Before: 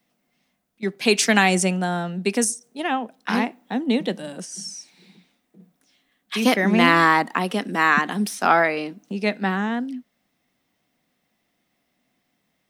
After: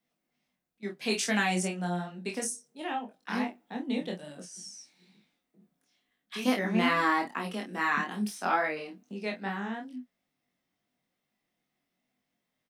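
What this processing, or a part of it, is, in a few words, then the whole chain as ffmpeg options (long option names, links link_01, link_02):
double-tracked vocal: -filter_complex "[0:a]asplit=2[link_01][link_02];[link_02]adelay=28,volume=-6dB[link_03];[link_01][link_03]amix=inputs=2:normalize=0,flanger=delay=19.5:depth=3.1:speed=2.3,volume=-8.5dB"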